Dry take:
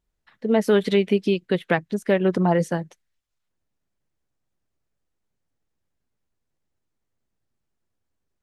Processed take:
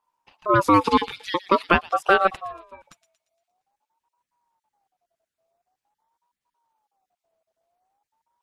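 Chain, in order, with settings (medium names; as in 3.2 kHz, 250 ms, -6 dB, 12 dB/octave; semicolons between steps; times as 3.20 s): random holes in the spectrogram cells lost 23%; in parallel at -1 dB: gain riding within 3 dB 0.5 s; on the sum: vibrato 4.1 Hz 21 cents; 2.36–2.82 s: pitch-class resonator G, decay 0.5 s; on a send: feedback echo behind a high-pass 116 ms, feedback 49%, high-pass 2.8 kHz, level -12 dB; on the sum: ring modulator with a swept carrier 810 Hz, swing 20%, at 0.47 Hz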